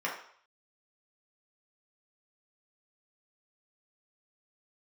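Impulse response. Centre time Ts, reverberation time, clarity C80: 32 ms, 0.60 s, 9.5 dB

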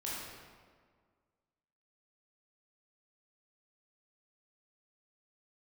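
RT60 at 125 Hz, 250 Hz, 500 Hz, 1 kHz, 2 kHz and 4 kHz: 1.9, 1.9, 1.8, 1.7, 1.4, 1.1 s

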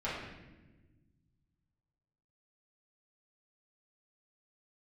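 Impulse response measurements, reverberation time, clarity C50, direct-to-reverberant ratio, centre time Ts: 1.2 s, 1.0 dB, -10.5 dB, 68 ms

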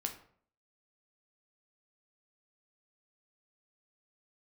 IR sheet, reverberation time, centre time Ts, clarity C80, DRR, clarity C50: 0.55 s, 13 ms, 14.5 dB, 3.5 dB, 10.0 dB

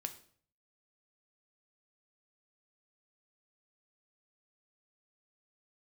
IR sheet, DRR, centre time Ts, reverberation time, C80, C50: 7.0 dB, 7 ms, 0.55 s, 17.0 dB, 13.0 dB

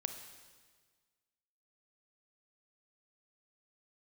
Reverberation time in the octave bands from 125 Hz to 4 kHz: 1.7, 1.6, 1.6, 1.5, 1.5, 1.5 s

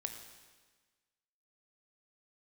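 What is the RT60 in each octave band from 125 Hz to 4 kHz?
1.4, 1.5, 1.4, 1.4, 1.4, 1.4 s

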